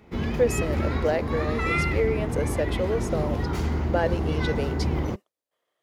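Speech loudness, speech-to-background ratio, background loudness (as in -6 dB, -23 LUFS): -29.0 LUFS, -1.5 dB, -27.5 LUFS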